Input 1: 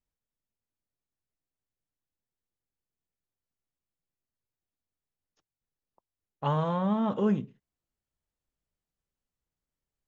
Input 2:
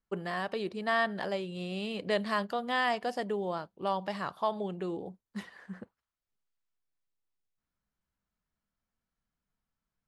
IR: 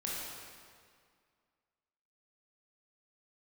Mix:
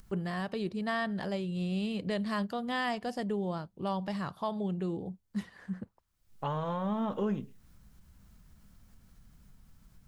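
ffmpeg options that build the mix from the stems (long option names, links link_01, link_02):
-filter_complex "[0:a]asubboost=boost=3.5:cutoff=62,volume=-0.5dB[link_01];[1:a]bass=frequency=250:gain=14,treble=frequency=4000:gain=4,acompressor=mode=upward:threshold=-33dB:ratio=2.5,volume=-4dB[link_02];[link_01][link_02]amix=inputs=2:normalize=0,alimiter=limit=-23dB:level=0:latency=1:release=264"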